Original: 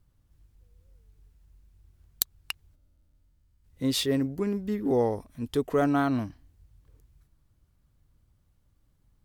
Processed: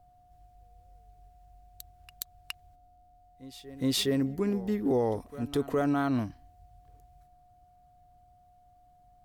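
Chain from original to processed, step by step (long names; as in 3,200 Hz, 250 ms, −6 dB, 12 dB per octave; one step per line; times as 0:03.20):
backwards echo 415 ms −20.5 dB
steady tone 720 Hz −59 dBFS
brickwall limiter −18.5 dBFS, peak gain reduction 11.5 dB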